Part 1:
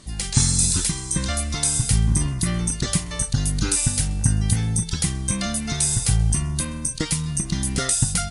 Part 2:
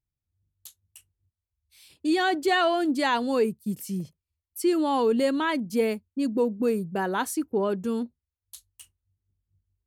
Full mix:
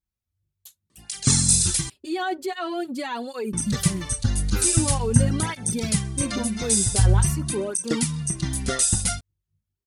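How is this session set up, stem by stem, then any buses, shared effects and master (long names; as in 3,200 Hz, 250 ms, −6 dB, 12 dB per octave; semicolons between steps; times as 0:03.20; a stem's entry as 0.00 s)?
+2.0 dB, 0.90 s, muted 0:01.90–0:03.53, no send, multiband upward and downward expander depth 70%
+2.0 dB, 0.00 s, no send, comb filter 5.4 ms, depth 38%; brickwall limiter −20.5 dBFS, peak gain reduction 10 dB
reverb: not used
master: through-zero flanger with one copy inverted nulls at 0.45 Hz, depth 7.8 ms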